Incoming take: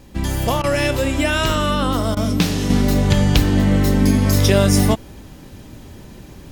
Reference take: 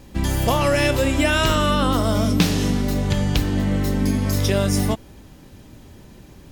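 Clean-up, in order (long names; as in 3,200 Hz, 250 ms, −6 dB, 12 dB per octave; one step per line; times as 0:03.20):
repair the gap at 0:00.62/0:02.15, 16 ms
level correction −5.5 dB, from 0:02.70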